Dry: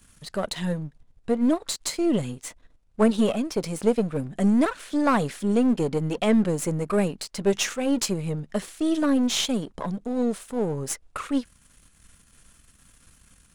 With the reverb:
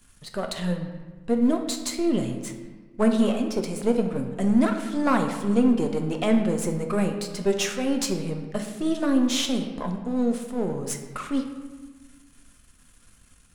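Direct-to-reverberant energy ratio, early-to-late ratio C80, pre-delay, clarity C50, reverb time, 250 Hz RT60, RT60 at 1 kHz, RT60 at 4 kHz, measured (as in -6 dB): 4.0 dB, 9.0 dB, 3 ms, 7.0 dB, 1.4 s, 1.8 s, 1.4 s, 0.90 s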